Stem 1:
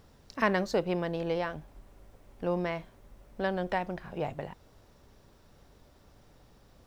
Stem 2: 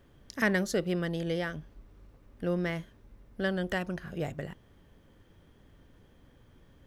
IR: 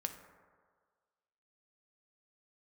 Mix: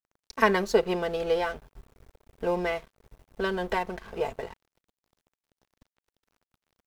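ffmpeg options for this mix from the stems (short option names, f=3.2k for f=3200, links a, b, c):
-filter_complex "[0:a]aecho=1:1:4.5:0.79,volume=2.5dB[a];[1:a]adelay=1.9,volume=-2dB[b];[a][b]amix=inputs=2:normalize=0,aeval=exprs='sgn(val(0))*max(abs(val(0))-0.00531,0)':c=same"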